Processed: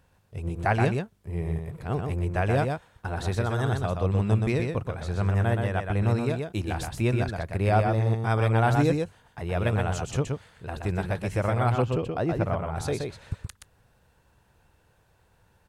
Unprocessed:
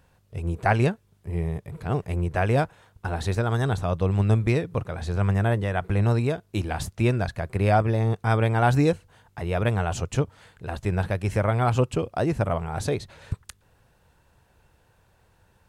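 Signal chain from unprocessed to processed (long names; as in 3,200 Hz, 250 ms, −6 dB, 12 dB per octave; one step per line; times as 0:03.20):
0:11.72–0:12.76: parametric band 8,500 Hz −10.5 dB 1.3 octaves
on a send: single-tap delay 124 ms −4.5 dB
on the sum: level −3 dB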